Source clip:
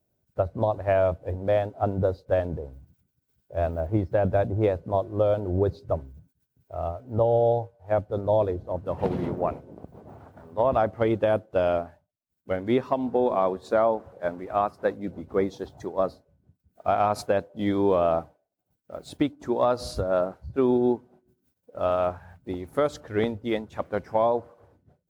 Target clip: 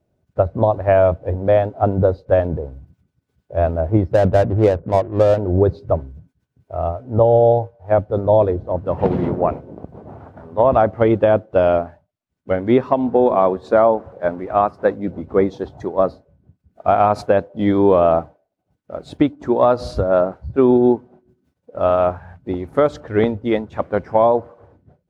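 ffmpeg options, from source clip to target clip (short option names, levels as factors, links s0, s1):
-filter_complex "[0:a]aemphasis=mode=reproduction:type=75fm,asettb=1/sr,asplit=3[s0][s1][s2];[s0]atrim=end=4.124[s3];[s1]atrim=start=4.12:end=5.39,asetpts=PTS-STARTPTS,afade=t=in:d=0.004:c=qsin,afade=t=out:st=1.266:d=0.004:c=qsin,adynamicsmooth=sensitivity=6:basefreq=680[s4];[s2]atrim=start=5.386[s5];[s3][s4]acrossfade=d=0.004:c1=hsin:c2=qsin[s6];[s6][s5]acrossfade=d=0.004:c1=qsin:c2=hsin,volume=2.51"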